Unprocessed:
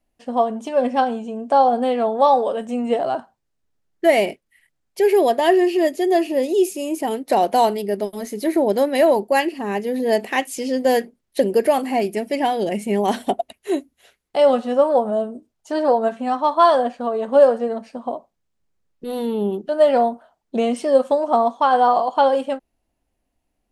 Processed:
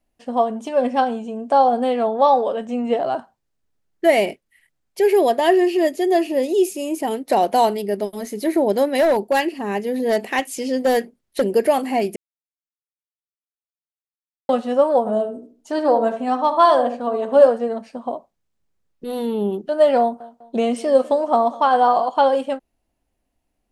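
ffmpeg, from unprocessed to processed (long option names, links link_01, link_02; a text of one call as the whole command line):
ffmpeg -i in.wav -filter_complex "[0:a]asettb=1/sr,asplit=3[link_01][link_02][link_03];[link_01]atrim=end=2.074[link_04];[link_02]atrim=start=2.07:end=3.12,asetpts=PTS-STARTPTS,afade=type=in:duration=0.004:curve=qsin,afade=type=out:start_time=1.046:duration=0.004:curve=qsin,equalizer=frequency=10000:width_type=o:width=0.54:gain=-14.5[link_05];[link_03]atrim=start=3.116[link_06];[link_04][link_05]acrossfade=duration=0.004:curve1=hsin:curve2=qsin[link_07];[link_07][link_06]acrossfade=duration=0.004:curve1=qsin:curve2=hsin,asettb=1/sr,asplit=3[link_08][link_09][link_10];[link_08]atrim=end=8.904[link_11];[link_09]atrim=start=8.9:end=11.53,asetpts=PTS-STARTPTS,afade=type=in:duration=0.004:curve=qsin,afade=type=out:start_time=2.626:duration=0.004:curve=qsin,volume=12dB,asoftclip=hard,volume=-12dB[link_12];[link_10]atrim=start=11.526[link_13];[link_11][link_12]acrossfade=duration=0.004:curve1=hsin:curve2=qsin[link_14];[link_14][link_13]acrossfade=duration=0.004:curve1=qsin:curve2=hsin,asettb=1/sr,asplit=3[link_15][link_16][link_17];[link_15]atrim=end=14.994[link_18];[link_16]atrim=start=14.99:end=17.47,asetpts=PTS-STARTPTS,afade=type=in:duration=0.004:curve=qsin,afade=type=out:start_time=2.476:duration=0.004:curve=qsin,asplit=2[link_19][link_20];[link_20]adelay=75,lowpass=frequency=910:poles=1,volume=-6dB,asplit=2[link_21][link_22];[link_22]adelay=75,lowpass=frequency=910:poles=1,volume=0.34,asplit=2[link_23][link_24];[link_24]adelay=75,lowpass=frequency=910:poles=1,volume=0.34,asplit=2[link_25][link_26];[link_26]adelay=75,lowpass=frequency=910:poles=1,volume=0.34[link_27];[link_19][link_21][link_23][link_25][link_27]amix=inputs=5:normalize=0,atrim=end_sample=109368[link_28];[link_17]atrim=start=17.466[link_29];[link_18][link_28]acrossfade=duration=0.004:curve1=hsin:curve2=qsin[link_30];[link_30][link_29]acrossfade=duration=0.004:curve1=qsin:curve2=hsin,asettb=1/sr,asplit=3[link_31][link_32][link_33];[link_31]atrim=end=20.004[link_34];[link_32]atrim=start=20:end=22.09,asetpts=PTS-STARTPTS,afade=type=in:duration=0.004:curve=qsin,afade=type=out:start_time=2.086:duration=0.004:curve=qsin,aecho=1:1:201|402|603:0.1|0.041|0.0168,atrim=end_sample=92169[link_35];[link_33]atrim=start=22.086[link_36];[link_34][link_35]acrossfade=duration=0.004:curve1=hsin:curve2=qsin[link_37];[link_37][link_36]acrossfade=duration=0.004:curve1=qsin:curve2=hsin,asplit=3[link_38][link_39][link_40];[link_38]atrim=end=12.16,asetpts=PTS-STARTPTS,afade=type=out:start_time=12.156:duration=0.004:curve=hsin[link_41];[link_39]atrim=start=12.16:end=14.49,asetpts=PTS-STARTPTS,volume=0[link_42];[link_40]atrim=start=14.49,asetpts=PTS-STARTPTS,afade=type=in:duration=0.004:curve=hsin[link_43];[link_41][link_42][link_43]concat=n=3:v=0:a=1" out.wav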